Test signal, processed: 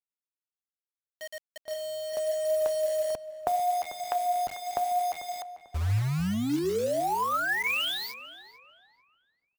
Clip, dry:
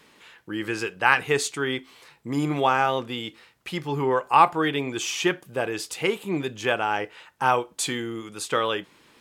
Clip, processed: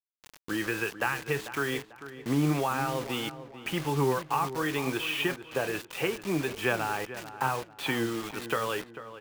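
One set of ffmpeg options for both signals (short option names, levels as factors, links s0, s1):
-filter_complex "[0:a]lowpass=f=2800:w=0.5412,lowpass=f=2800:w=1.3066,lowshelf=f=410:g=-6,bandreject=f=2100:w=12,acrossover=split=170[s0][s1];[s1]acompressor=threshold=0.0282:ratio=8[s2];[s0][s2]amix=inputs=2:normalize=0,flanger=delay=6.3:depth=4.4:regen=76:speed=0.78:shape=sinusoidal,acrusher=bits=7:mix=0:aa=0.000001,asplit=2[s3][s4];[s4]adelay=444,lowpass=f=2100:p=1,volume=0.237,asplit=2[s5][s6];[s6]adelay=444,lowpass=f=2100:p=1,volume=0.37,asplit=2[s7][s8];[s8]adelay=444,lowpass=f=2100:p=1,volume=0.37,asplit=2[s9][s10];[s10]adelay=444,lowpass=f=2100:p=1,volume=0.37[s11];[s5][s7][s9][s11]amix=inputs=4:normalize=0[s12];[s3][s12]amix=inputs=2:normalize=0,volume=2.82"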